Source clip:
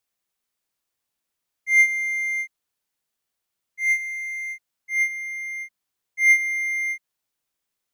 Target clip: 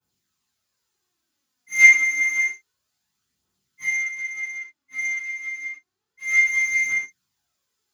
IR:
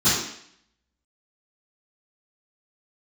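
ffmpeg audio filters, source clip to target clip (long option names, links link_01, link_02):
-filter_complex "[0:a]asettb=1/sr,asplit=3[link_01][link_02][link_03];[link_01]atrim=end=3.864[link_04];[link_02]atrim=start=3.86:end=6.45,asetpts=PTS-STARTPTS,afade=type=in:duration=0.004:curve=qsin,afade=type=out:start_time=2.586:duration=0.004:curve=qsin,highshelf=frequency=2900:gain=-10[link_05];[link_03]atrim=start=6.446[link_06];[link_04][link_05]acrossfade=duration=0.004:curve1=hsin:curve2=qsin[link_07];[link_07][link_06]acrossfade=duration=0.004:curve1=qsin:curve2=hsin,aphaser=in_gain=1:out_gain=1:delay=4.5:decay=0.66:speed=0.29:type=triangular[link_08];[1:a]atrim=start_sample=2205,atrim=end_sample=6615[link_09];[link_08][link_09]afir=irnorm=-1:irlink=0,volume=-14dB"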